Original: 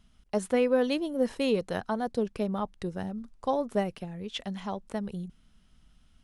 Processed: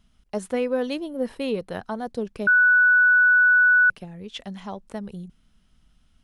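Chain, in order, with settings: 1.04–1.81 s: peaking EQ 6.6 kHz -9 dB 0.64 oct; 2.47–3.90 s: bleep 1.48 kHz -13 dBFS

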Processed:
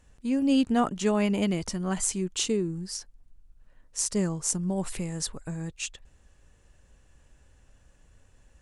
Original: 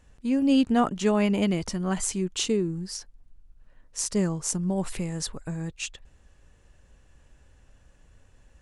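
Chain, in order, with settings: peaking EQ 8.6 kHz +4 dB 1.1 oct; trim -2 dB

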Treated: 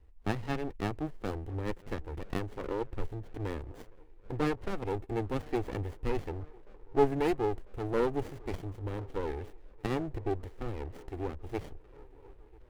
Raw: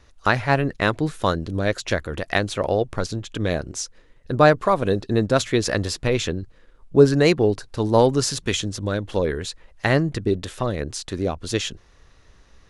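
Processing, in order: median filter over 9 samples; bass shelf 83 Hz +10.5 dB; static phaser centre 950 Hz, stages 8; feedback echo behind a band-pass 997 ms, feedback 78%, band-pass 690 Hz, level -23.5 dB; sliding maximum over 33 samples; trim -8.5 dB

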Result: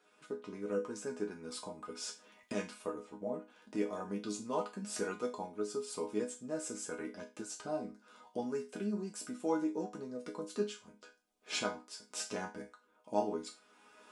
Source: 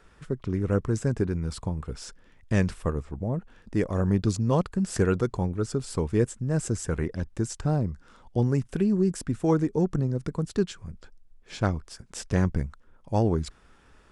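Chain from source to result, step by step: recorder AGC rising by 14 dB/s; high-pass 350 Hz 12 dB/octave; band-stop 1.8 kHz, Q 6.3; chord resonator G#3 minor, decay 0.28 s; trim +9.5 dB

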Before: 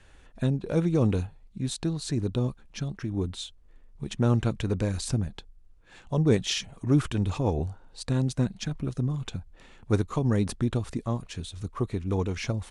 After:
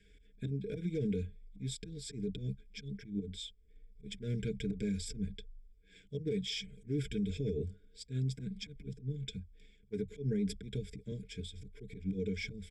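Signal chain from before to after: one-sided clip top -18 dBFS, bottom -15 dBFS; elliptic band-stop 480–1800 Hz, stop band 40 dB; comb 4.9 ms, depth 55%; slow attack 117 ms; rippled EQ curve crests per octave 1.7, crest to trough 15 dB; peak limiter -19 dBFS, peak gain reduction 11 dB; treble shelf 7.1 kHz -9 dB; 8.93–11.12 s: three bands expanded up and down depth 40%; trim -8 dB

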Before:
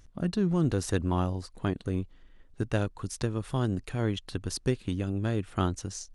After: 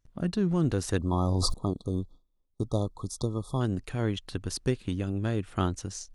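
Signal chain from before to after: 0.98–3.60 s: spectral selection erased 1.3–3.3 kHz; gate with hold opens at -44 dBFS; 1.13–1.54 s: level flattener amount 100%

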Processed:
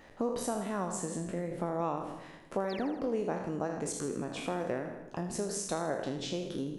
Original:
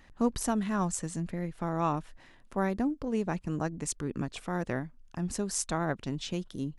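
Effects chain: spectral sustain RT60 0.58 s; compression 4:1, threshold -36 dBFS, peak gain reduction 13 dB; peaking EQ 520 Hz +10 dB 1.5 oct; painted sound fall, 2.69–2.98 s, 240–5800 Hz -47 dBFS; bass shelf 73 Hz -10 dB; on a send: two-band feedback delay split 340 Hz, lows 180 ms, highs 80 ms, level -10.5 dB

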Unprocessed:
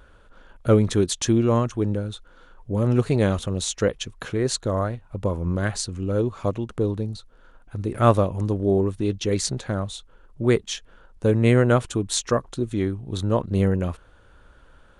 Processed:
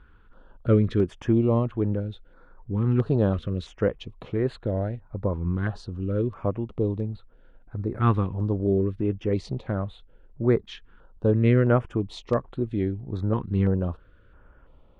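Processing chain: distance through air 370 m; step-sequenced notch 3 Hz 600–5600 Hz; trim -1 dB

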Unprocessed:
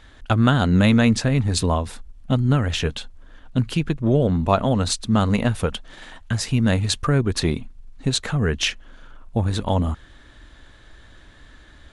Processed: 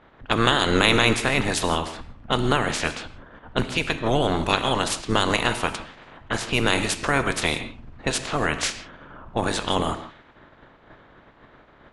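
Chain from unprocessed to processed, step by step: spectral peaks clipped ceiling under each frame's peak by 26 dB; gated-style reverb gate 190 ms flat, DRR 9 dB; level-controlled noise filter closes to 1.2 kHz, open at -16.5 dBFS; trim -3 dB

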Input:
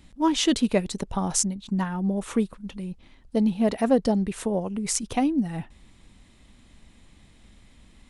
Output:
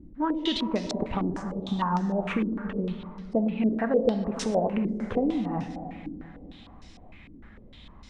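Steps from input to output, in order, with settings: compression 6:1, threshold -28 dBFS, peak gain reduction 13 dB; plate-style reverb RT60 3.3 s, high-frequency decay 0.4×, DRR 5.5 dB; step-sequenced low-pass 6.6 Hz 320–5400 Hz; trim +2 dB

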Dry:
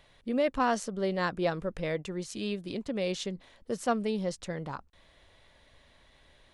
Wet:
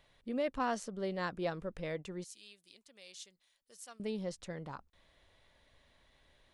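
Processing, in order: 2.24–4.00 s: pre-emphasis filter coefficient 0.97; trim -7 dB

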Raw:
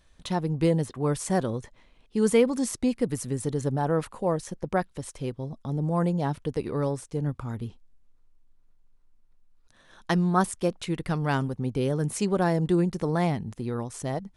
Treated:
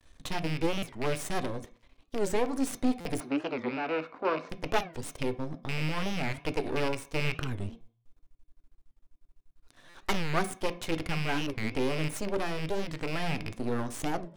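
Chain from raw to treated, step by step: rattle on loud lows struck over -31 dBFS, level -23 dBFS; gain riding within 4 dB 0.5 s; half-wave rectifier; 3.20–4.50 s: cabinet simulation 260–3800 Hz, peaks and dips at 270 Hz +6 dB, 1.4 kHz +6 dB, 1.9 kHz -7 dB, 3.2 kHz -10 dB; on a send at -9 dB: reverberation RT60 0.45 s, pre-delay 3 ms; on the sum: buffer glitch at 0.79/3.00/9.89 s, samples 256, times 8; warped record 45 rpm, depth 250 cents

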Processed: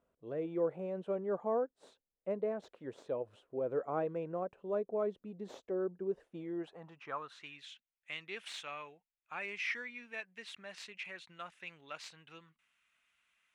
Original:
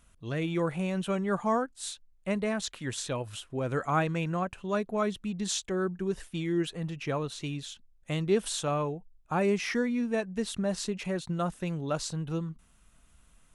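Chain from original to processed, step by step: tracing distortion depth 0.055 ms; band-pass sweep 490 Hz -> 2.3 kHz, 6.34–7.68 s

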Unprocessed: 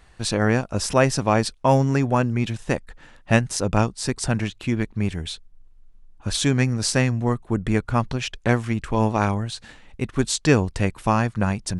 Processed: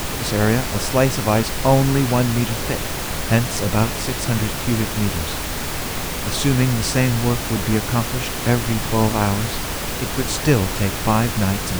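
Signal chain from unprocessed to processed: harmonic-percussive split percussive -5 dB; added noise pink -28 dBFS; trim +3 dB

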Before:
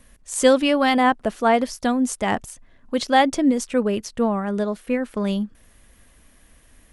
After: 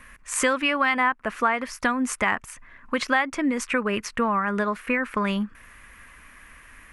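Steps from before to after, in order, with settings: high-order bell 1.6 kHz +14 dB; compression 4:1, threshold -21 dBFS, peak gain reduction 15 dB

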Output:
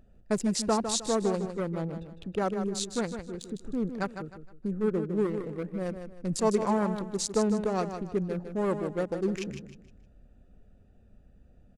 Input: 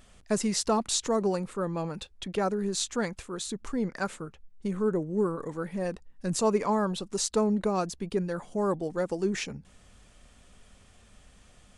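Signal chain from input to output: local Wiener filter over 41 samples; feedback delay 155 ms, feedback 32%, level -8.5 dB

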